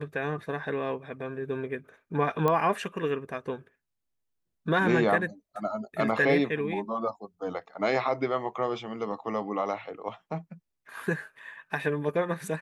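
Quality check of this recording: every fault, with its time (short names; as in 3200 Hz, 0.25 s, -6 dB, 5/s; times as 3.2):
2.48 pop -14 dBFS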